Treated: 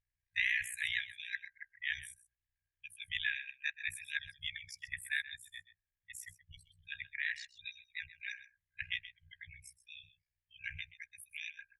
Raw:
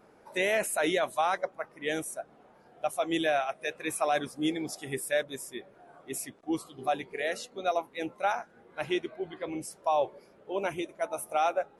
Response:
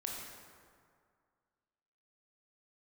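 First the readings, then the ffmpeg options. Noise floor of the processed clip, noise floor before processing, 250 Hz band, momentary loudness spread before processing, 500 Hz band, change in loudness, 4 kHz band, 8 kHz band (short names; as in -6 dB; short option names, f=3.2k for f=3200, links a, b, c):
under -85 dBFS, -59 dBFS, under -40 dB, 11 LU, under -40 dB, -8.0 dB, -3.5 dB, -12.0 dB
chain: -af "afftdn=nr=27:nf=-42,afftfilt=real='re*(1-between(b*sr/4096,100,1600))':imag='im*(1-between(b*sr/4096,100,1600))':win_size=4096:overlap=0.75,aemphasis=mode=reproduction:type=bsi,tremolo=f=61:d=0.788,aecho=1:1:128:0.168,volume=4.5dB"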